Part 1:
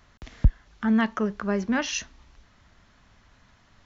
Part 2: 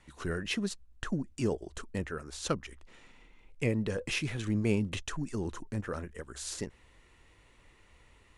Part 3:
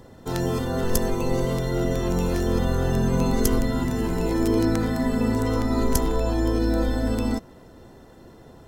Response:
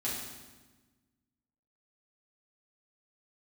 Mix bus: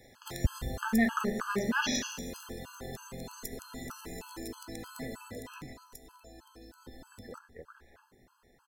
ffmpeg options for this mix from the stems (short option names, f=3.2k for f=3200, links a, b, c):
-filter_complex "[0:a]volume=-1dB,asplit=3[a][b][c];[b]volume=-6.5dB[d];[1:a]lowpass=f=1.6k:w=0.5412,lowpass=f=1.6k:w=1.3066,acompressor=threshold=-38dB:ratio=6,adelay=1400,volume=1.5dB,asplit=3[e][f][g];[e]atrim=end=5.73,asetpts=PTS-STARTPTS,afade=t=out:st=5.726:d=0.004:c=hsin[h];[f]atrim=start=5.73:end=6.86,asetpts=PTS-STARTPTS,volume=0[i];[g]atrim=start=6.86,asetpts=PTS-STARTPTS,afade=t=in:d=0.004:c=hsin[j];[h][i][j]concat=n=3:v=0:a=1,asplit=2[k][l];[l]volume=-18.5dB[m];[2:a]highshelf=f=3.8k:g=10,acompressor=threshold=-25dB:ratio=6,volume=-7dB,afade=t=out:st=5.19:d=0.62:silence=0.334965,asplit=2[n][o];[o]volume=-18dB[p];[c]apad=whole_len=431120[q];[k][q]sidechaincompress=threshold=-38dB:ratio=16:attack=6:release=1410[r];[3:a]atrim=start_sample=2205[s];[d][m][p]amix=inputs=3:normalize=0[t];[t][s]afir=irnorm=-1:irlink=0[u];[a][r][n][u]amix=inputs=4:normalize=0,lowshelf=f=470:g=-9,afftfilt=real='re*gt(sin(2*PI*3.2*pts/sr)*(1-2*mod(floor(b*sr/1024/840),2)),0)':imag='im*gt(sin(2*PI*3.2*pts/sr)*(1-2*mod(floor(b*sr/1024/840),2)),0)':win_size=1024:overlap=0.75"